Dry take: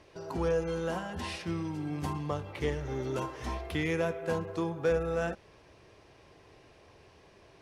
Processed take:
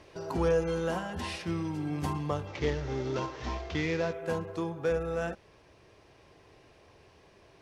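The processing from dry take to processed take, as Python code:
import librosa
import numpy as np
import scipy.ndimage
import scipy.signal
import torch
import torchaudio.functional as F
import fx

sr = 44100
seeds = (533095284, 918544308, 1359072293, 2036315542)

y = fx.cvsd(x, sr, bps=32000, at=(2.47, 4.13))
y = fx.rider(y, sr, range_db=10, speed_s=2.0)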